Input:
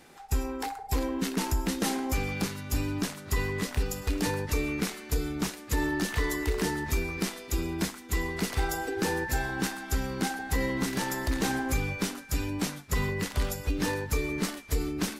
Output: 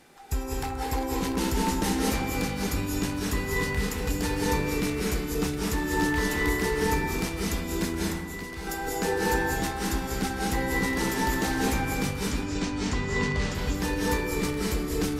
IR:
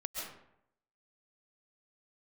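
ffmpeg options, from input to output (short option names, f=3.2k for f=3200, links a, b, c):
-filter_complex "[0:a]asettb=1/sr,asplit=3[a][b][c];[a]atrim=end=8.034[d];[b]atrim=start=8.03:end=8.67,asetpts=PTS-STARTPTS,afade=t=in:d=0.004:c=qsin,afade=t=out:st=0.636:d=0.004:c=qsin,acompressor=threshold=-41dB:ratio=2.5[e];[c]atrim=start=8.666[f];[d][e]acrossfade=d=0.004:c1=hsin:c2=qsin[g];[g][f]acrossfade=d=0.004:c1=qsin:c2=hsin,asettb=1/sr,asplit=3[h][i][j];[h]atrim=end=12.274[k];[i]atrim=start=12.27:end=13.55,asetpts=PTS-STARTPTS,afade=t=in:d=0.004:c=qsin,afade=t=out:st=1.276:d=0.004:c=qsin,lowpass=f=7.2k:w=0.5412,lowpass=f=7.2k:w=1.3066[l];[j]atrim=start=13.546[m];[k][l]acrossfade=d=0.004:c1=hsin:c2=qsin[n];[n][m]acrossfade=d=0.004:c1=qsin:c2=hsin[o];[1:a]atrim=start_sample=2205,asetrate=30429,aresample=44100[p];[o][p]afir=irnorm=-1:irlink=0"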